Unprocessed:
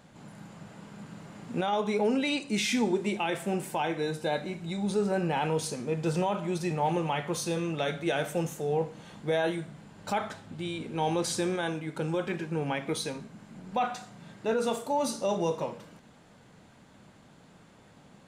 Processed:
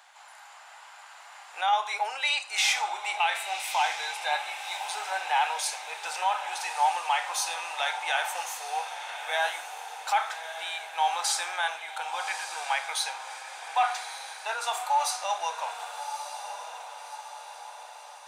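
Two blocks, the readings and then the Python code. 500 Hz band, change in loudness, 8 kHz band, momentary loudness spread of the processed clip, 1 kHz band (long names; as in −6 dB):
−10.0 dB, +1.5 dB, +6.5 dB, 16 LU, +6.5 dB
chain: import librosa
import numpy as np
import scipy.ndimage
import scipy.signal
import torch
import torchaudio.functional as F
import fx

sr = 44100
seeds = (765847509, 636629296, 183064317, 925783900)

y = scipy.signal.sosfilt(scipy.signal.ellip(4, 1.0, 80, 770.0, 'highpass', fs=sr, output='sos'), x)
y = fx.echo_diffused(y, sr, ms=1183, feedback_pct=53, wet_db=-9)
y = y * librosa.db_to_amplitude(6.5)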